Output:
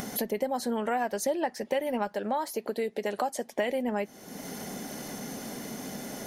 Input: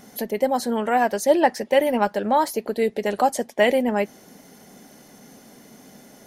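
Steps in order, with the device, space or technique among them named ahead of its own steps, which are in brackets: upward and downward compression (upward compressor, threshold -30 dBFS; compression 5:1, threshold -28 dBFS, peak gain reduction 15 dB); 2.15–3.53 s: high-pass 210 Hz 6 dB/octave; trim +1 dB

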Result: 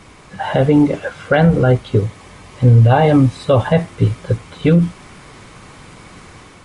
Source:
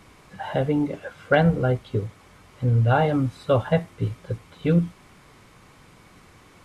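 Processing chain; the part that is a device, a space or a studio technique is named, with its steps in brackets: 2.00–3.80 s: band-stop 1.4 kHz, Q 7.8; low-bitrate web radio (level rider gain up to 3.5 dB; peak limiter -12 dBFS, peak gain reduction 8 dB; trim +9 dB; MP3 48 kbps 32 kHz)

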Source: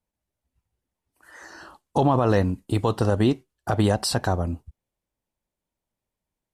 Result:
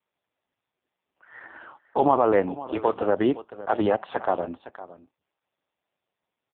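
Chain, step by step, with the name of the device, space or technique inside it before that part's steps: satellite phone (band-pass 360–3300 Hz; delay 510 ms -16.5 dB; trim +4 dB; AMR-NB 4.75 kbps 8 kHz)

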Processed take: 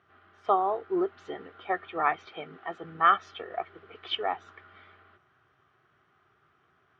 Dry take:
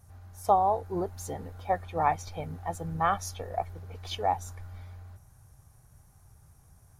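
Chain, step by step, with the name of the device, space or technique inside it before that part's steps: phone earpiece (cabinet simulation 370–3200 Hz, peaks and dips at 370 Hz +9 dB, 540 Hz -8 dB, 870 Hz -10 dB, 1.3 kHz +10 dB, 1.9 kHz +4 dB, 3.1 kHz +9 dB); 2.26–2.84 s: high-pass 120 Hz 24 dB/octave; trim +2 dB

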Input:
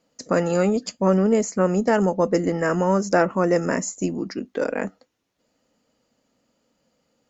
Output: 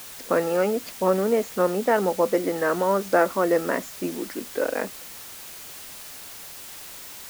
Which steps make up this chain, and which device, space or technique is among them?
wax cylinder (band-pass 320–2800 Hz; wow and flutter; white noise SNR 15 dB)

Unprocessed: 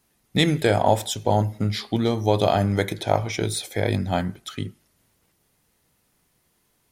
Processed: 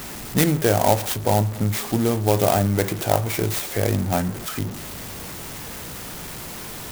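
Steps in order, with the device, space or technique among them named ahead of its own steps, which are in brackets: early CD player with a faulty converter (jump at every zero crossing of -27.5 dBFS; sampling jitter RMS 0.071 ms)

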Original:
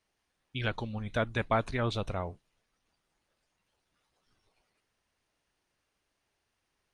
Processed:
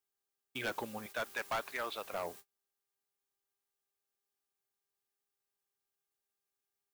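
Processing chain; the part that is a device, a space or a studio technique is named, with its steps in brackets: 1.06–2.12 s: high-pass 1.2 kHz 6 dB/octave; aircraft radio (band-pass 350–2600 Hz; hard clipper -32.5 dBFS, distortion -8 dB; mains buzz 400 Hz, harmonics 4, -68 dBFS -2 dB/octave; white noise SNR 12 dB; gate -52 dBFS, range -35 dB); treble shelf 8.6 kHz +4.5 dB; trim +1.5 dB

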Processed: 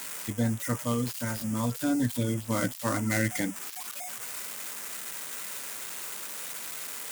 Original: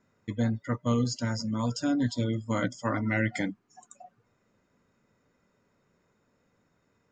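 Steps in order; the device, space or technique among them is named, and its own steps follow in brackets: 0.86–1.38 s: bass shelf 440 Hz -4 dB; budget class-D amplifier (dead-time distortion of 0.11 ms; zero-crossing glitches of -20.5 dBFS)

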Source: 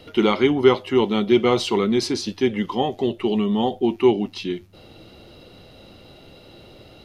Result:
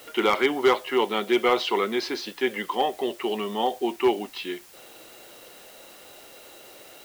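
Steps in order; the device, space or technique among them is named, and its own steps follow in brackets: drive-through speaker (band-pass 500–3500 Hz; peaking EQ 1.7 kHz +5 dB 0.42 oct; hard clipper -13.5 dBFS, distortion -20 dB; white noise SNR 24 dB); trim +1 dB

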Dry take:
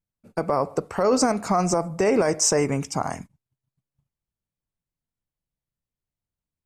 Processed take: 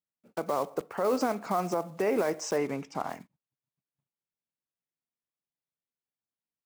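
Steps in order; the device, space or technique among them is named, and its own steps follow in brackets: early digital voice recorder (band-pass 220–3600 Hz; block-companded coder 5-bit); 2.56–3.09 s: treble shelf 10 kHz -10.5 dB; trim -6.5 dB

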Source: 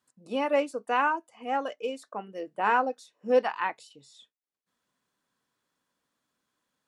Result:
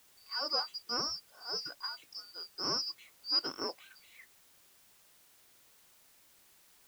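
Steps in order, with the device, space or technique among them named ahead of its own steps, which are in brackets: split-band scrambled radio (four frequency bands reordered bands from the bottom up 2341; band-pass 350–3000 Hz; white noise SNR 23 dB)

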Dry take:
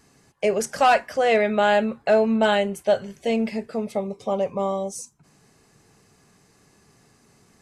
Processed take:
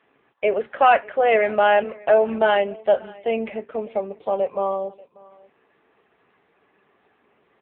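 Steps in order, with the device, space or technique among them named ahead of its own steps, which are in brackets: 1.83–2.46 s: high-pass 320 Hz -> 110 Hz 12 dB/octave; satellite phone (band-pass 380–3400 Hz; delay 588 ms -23.5 dB; trim +3.5 dB; AMR-NB 6.7 kbps 8 kHz)

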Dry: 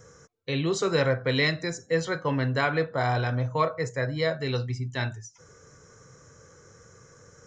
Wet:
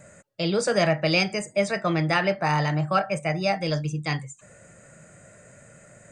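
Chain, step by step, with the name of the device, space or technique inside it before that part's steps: nightcore (tape speed +22%); trim +2.5 dB

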